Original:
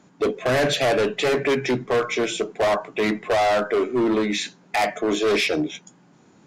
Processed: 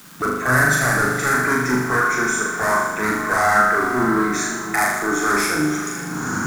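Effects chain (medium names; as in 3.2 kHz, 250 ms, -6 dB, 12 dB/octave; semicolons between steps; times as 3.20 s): recorder AGC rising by 44 dB/s; FFT filter 220 Hz 0 dB, 560 Hz -14 dB, 1.5 kHz +11 dB, 2.9 kHz -21 dB, 5.9 kHz +1 dB, 9.9 kHz +11 dB; on a send: echo that smears into a reverb 488 ms, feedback 48%, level -11.5 dB; on the sum: crackle 310 per s -36 dBFS; flutter echo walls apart 6.8 m, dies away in 0.95 s; in parallel at -11 dB: word length cut 6-bit, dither triangular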